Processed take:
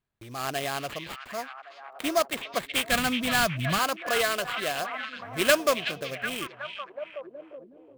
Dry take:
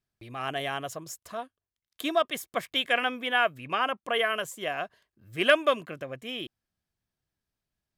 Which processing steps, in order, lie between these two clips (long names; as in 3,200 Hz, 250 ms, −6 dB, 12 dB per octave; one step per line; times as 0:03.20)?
linear-phase brick-wall low-pass 8,500 Hz
in parallel at −7 dB: gain into a clipping stage and back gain 21.5 dB
on the sum: sample-rate reduction 5,800 Hz, jitter 20%
0:02.89–0:03.79: low shelf with overshoot 260 Hz +13 dB, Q 1.5
echo through a band-pass that steps 372 ms, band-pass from 2,800 Hz, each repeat −0.7 octaves, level −4 dB
level −2 dB